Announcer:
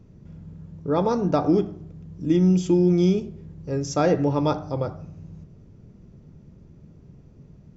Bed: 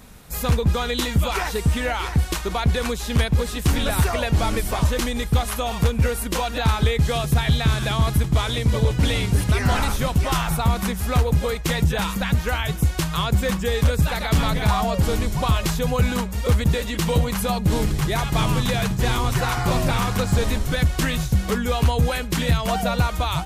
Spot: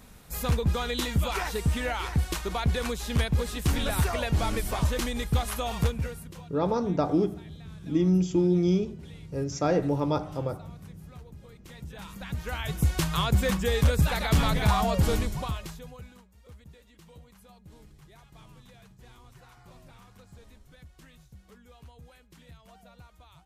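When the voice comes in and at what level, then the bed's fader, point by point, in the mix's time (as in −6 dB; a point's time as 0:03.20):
5.65 s, −4.5 dB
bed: 0:05.86 −6 dB
0:06.49 −29 dB
0:11.50 −29 dB
0:12.90 −3.5 dB
0:15.15 −3.5 dB
0:16.23 −31.5 dB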